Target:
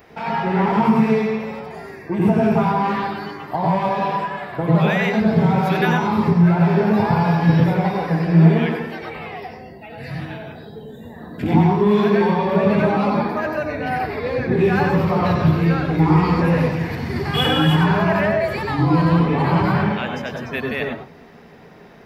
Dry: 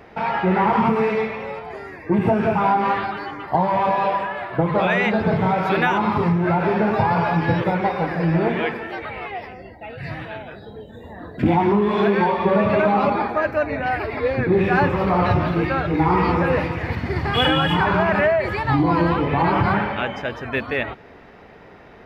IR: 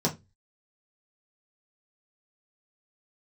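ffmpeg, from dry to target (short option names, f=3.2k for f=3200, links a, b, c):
-filter_complex "[0:a]aemphasis=mode=production:type=75kf,asplit=2[a][b];[1:a]atrim=start_sample=2205,adelay=92[c];[b][c]afir=irnorm=-1:irlink=0,volume=-12dB[d];[a][d]amix=inputs=2:normalize=0,volume=-5dB"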